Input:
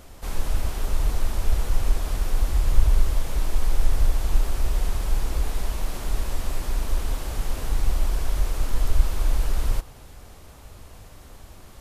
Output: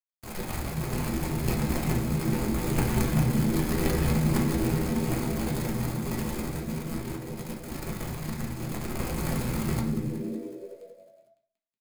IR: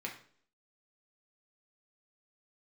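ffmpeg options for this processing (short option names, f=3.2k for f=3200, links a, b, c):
-filter_complex "[0:a]equalizer=f=2.7k:w=0.79:g=-11.5,acrusher=bits=4:mode=log:mix=0:aa=0.000001,asettb=1/sr,asplit=3[a][b][c];[a]atrim=end=6.484[d];[b]atrim=start=6.48:end=9.01,asetpts=PTS-STARTPTS,afade=t=in:d=0.004:c=qsin,afade=t=out:st=2.526:d=0.004:c=qsin,flanger=delay=5.9:depth=9.3:regen=78:speed=1:shape=triangular[e];[c]atrim=start=9.006[f];[d][e]acrossfade=d=0.004:c1=hsin:c2=qsin[g];[g][f]acrossfade=d=0.004:c1=qsin:c2=hsin,aeval=exprs='sgn(val(0))*max(abs(val(0))-0.0224,0)':c=same,asplit=9[h][i][j][k][l][m][n][o][p];[i]adelay=185,afreqshift=-85,volume=-11dB[q];[j]adelay=370,afreqshift=-170,volume=-15dB[r];[k]adelay=555,afreqshift=-255,volume=-19dB[s];[l]adelay=740,afreqshift=-340,volume=-23dB[t];[m]adelay=925,afreqshift=-425,volume=-27.1dB[u];[n]adelay=1110,afreqshift=-510,volume=-31.1dB[v];[o]adelay=1295,afreqshift=-595,volume=-35.1dB[w];[p]adelay=1480,afreqshift=-680,volume=-39.1dB[x];[h][q][r][s][t][u][v][w][x]amix=inputs=9:normalize=0[y];[1:a]atrim=start_sample=2205[z];[y][z]afir=irnorm=-1:irlink=0,volume=2dB"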